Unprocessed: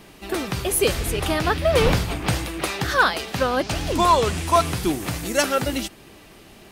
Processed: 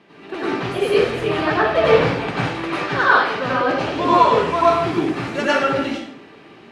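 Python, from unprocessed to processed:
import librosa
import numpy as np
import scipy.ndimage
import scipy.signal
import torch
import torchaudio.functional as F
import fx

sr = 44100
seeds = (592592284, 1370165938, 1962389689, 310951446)

y = fx.bandpass_edges(x, sr, low_hz=210.0, high_hz=2700.0)
y = fx.peak_eq(y, sr, hz=710.0, db=-2.5, octaves=1.8)
y = fx.rev_plate(y, sr, seeds[0], rt60_s=0.69, hf_ratio=0.75, predelay_ms=80, drr_db=-9.0)
y = F.gain(torch.from_numpy(y), -3.0).numpy()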